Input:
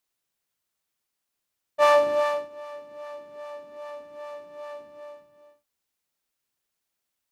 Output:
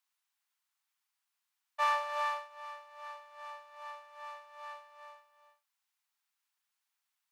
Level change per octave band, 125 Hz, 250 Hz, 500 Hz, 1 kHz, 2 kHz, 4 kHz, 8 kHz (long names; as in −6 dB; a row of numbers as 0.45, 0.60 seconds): can't be measured, below −40 dB, −21.5 dB, −6.5 dB, −6.5 dB, −7.5 dB, −9.5 dB